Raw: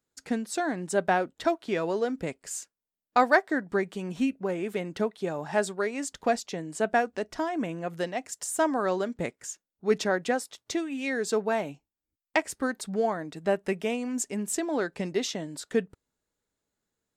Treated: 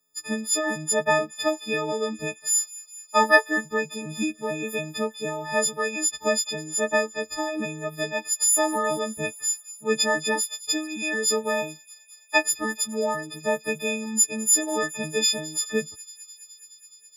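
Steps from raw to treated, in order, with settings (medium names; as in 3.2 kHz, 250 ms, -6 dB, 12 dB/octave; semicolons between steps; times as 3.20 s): partials quantised in pitch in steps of 6 st; feedback echo behind a high-pass 210 ms, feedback 81%, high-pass 3.9 kHz, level -18 dB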